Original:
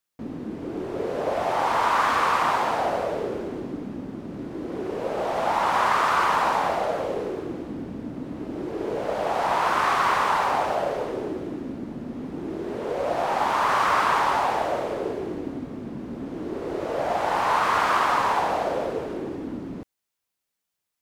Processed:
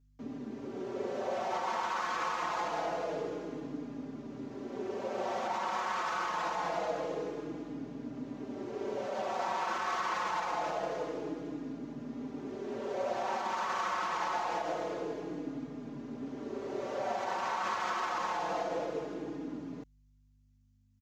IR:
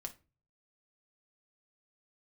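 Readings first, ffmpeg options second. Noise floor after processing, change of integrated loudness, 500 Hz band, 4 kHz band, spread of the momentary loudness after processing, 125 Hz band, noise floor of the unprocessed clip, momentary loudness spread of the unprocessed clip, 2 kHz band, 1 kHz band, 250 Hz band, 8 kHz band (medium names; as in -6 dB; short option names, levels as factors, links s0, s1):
-65 dBFS, -11.0 dB, -9.5 dB, -10.0 dB, 9 LU, -11.0 dB, -83 dBFS, 14 LU, -11.0 dB, -11.5 dB, -8.0 dB, -8.5 dB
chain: -filter_complex "[0:a]highshelf=f=7800:t=q:w=3:g=-6,alimiter=limit=0.141:level=0:latency=1:release=67,highpass=f=130:w=0.5412,highpass=f=130:w=1.3066,aeval=exprs='val(0)+0.00141*(sin(2*PI*50*n/s)+sin(2*PI*2*50*n/s)/2+sin(2*PI*3*50*n/s)/3+sin(2*PI*4*50*n/s)/4+sin(2*PI*5*50*n/s)/5)':c=same,asplit=2[s0][s1];[s1]adelay=4.5,afreqshift=-0.25[s2];[s0][s2]amix=inputs=2:normalize=1,volume=0.562"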